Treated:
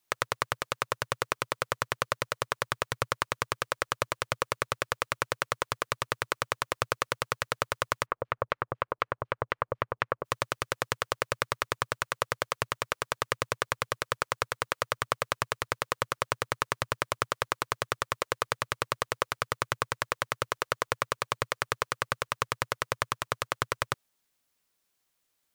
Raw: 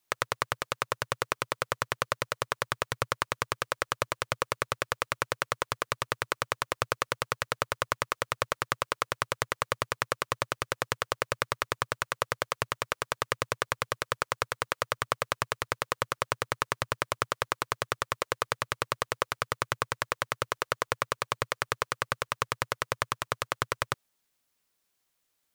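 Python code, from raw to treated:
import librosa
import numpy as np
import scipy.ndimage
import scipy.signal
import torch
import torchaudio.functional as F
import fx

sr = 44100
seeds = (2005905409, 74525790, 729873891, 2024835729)

y = fx.filter_lfo_lowpass(x, sr, shape='saw_down', hz=4.0, low_hz=590.0, high_hz=3100.0, q=0.99, at=(8.05, 10.24), fade=0.02)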